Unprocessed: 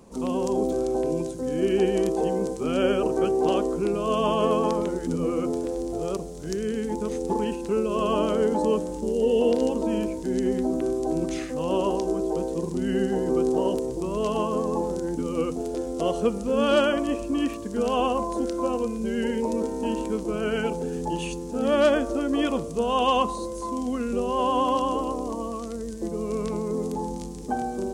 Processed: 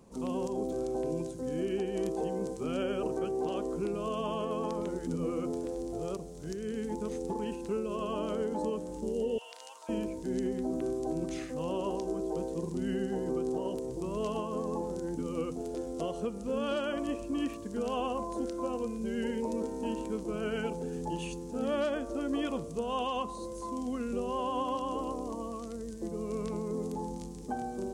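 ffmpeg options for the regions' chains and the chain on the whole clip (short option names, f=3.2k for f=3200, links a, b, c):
-filter_complex "[0:a]asettb=1/sr,asplit=3[a][b][c];[a]atrim=end=9.384[d];[b]atrim=start=9.38:end=9.89,asetpts=PTS-STARTPTS,afade=t=in:d=0.004:c=qsin,afade=t=out:st=0.506:d=0.004:c=qsin,highpass=f=1k:w=0.5412,highpass=f=1k:w=1.3066,aeval=exprs='val(0)+0.000631*sin(2*PI*1400*n/s)':c=same[e];[c]atrim=start=9.886[f];[d][e]acrossfade=d=0.004:c1=hsin:c2=qsin[g];[g][f]acrossfade=d=0.004:c1=qsin:c2=hsin,equalizer=f=130:w=1.7:g=4,alimiter=limit=-16dB:level=0:latency=1:release=286,volume=-7.5dB"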